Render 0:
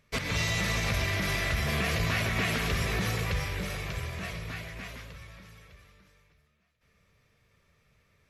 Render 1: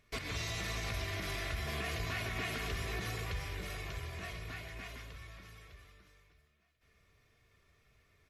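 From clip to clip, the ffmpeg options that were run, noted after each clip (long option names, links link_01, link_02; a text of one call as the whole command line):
ffmpeg -i in.wav -af "aecho=1:1:2.8:0.44,acompressor=threshold=-45dB:ratio=1.5,volume=-2.5dB" out.wav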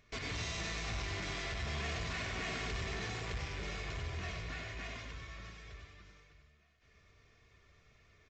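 ffmpeg -i in.wav -af "aresample=16000,asoftclip=type=tanh:threshold=-39dB,aresample=44100,aecho=1:1:96:0.596,volume=2.5dB" out.wav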